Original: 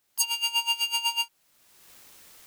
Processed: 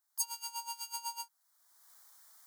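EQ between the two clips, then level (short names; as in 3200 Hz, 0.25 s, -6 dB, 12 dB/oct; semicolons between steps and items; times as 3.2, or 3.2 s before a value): HPF 360 Hz 24 dB/oct; low shelf 470 Hz -5 dB; fixed phaser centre 1100 Hz, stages 4; -7.0 dB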